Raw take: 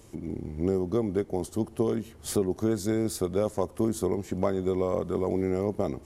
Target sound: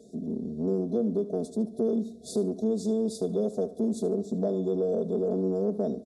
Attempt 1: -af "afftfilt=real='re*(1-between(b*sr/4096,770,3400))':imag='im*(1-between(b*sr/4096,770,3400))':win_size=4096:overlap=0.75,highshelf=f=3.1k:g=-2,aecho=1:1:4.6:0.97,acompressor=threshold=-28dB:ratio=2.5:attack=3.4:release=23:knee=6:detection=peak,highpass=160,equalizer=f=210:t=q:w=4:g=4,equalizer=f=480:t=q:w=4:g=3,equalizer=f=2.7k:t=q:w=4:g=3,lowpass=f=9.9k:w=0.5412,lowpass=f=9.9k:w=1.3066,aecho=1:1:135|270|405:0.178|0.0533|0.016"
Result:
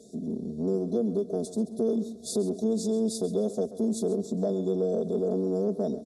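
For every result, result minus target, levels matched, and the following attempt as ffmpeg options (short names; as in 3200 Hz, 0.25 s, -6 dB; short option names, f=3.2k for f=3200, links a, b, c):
echo 61 ms late; 8000 Hz band +6.5 dB
-af "afftfilt=real='re*(1-between(b*sr/4096,770,3400))':imag='im*(1-between(b*sr/4096,770,3400))':win_size=4096:overlap=0.75,highshelf=f=3.1k:g=-2,aecho=1:1:4.6:0.97,acompressor=threshold=-28dB:ratio=2.5:attack=3.4:release=23:knee=6:detection=peak,highpass=160,equalizer=f=210:t=q:w=4:g=4,equalizer=f=480:t=q:w=4:g=3,equalizer=f=2.7k:t=q:w=4:g=3,lowpass=f=9.9k:w=0.5412,lowpass=f=9.9k:w=1.3066,aecho=1:1:74|148|222:0.178|0.0533|0.016"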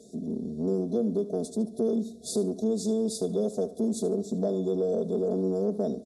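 8000 Hz band +6.5 dB
-af "afftfilt=real='re*(1-between(b*sr/4096,770,3400))':imag='im*(1-between(b*sr/4096,770,3400))':win_size=4096:overlap=0.75,highshelf=f=3.1k:g=-10,aecho=1:1:4.6:0.97,acompressor=threshold=-28dB:ratio=2.5:attack=3.4:release=23:knee=6:detection=peak,highpass=160,equalizer=f=210:t=q:w=4:g=4,equalizer=f=480:t=q:w=4:g=3,equalizer=f=2.7k:t=q:w=4:g=3,lowpass=f=9.9k:w=0.5412,lowpass=f=9.9k:w=1.3066,aecho=1:1:74|148|222:0.178|0.0533|0.016"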